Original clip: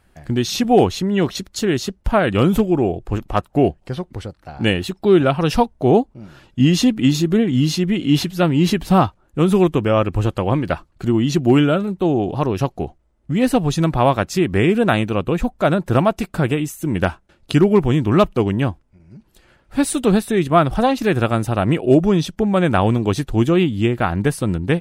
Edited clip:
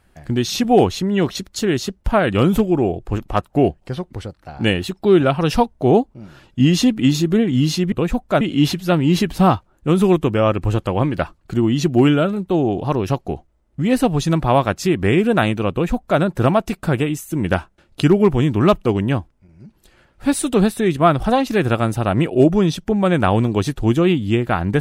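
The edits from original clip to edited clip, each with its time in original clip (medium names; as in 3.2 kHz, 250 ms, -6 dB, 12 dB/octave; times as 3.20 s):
15.22–15.71 s: copy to 7.92 s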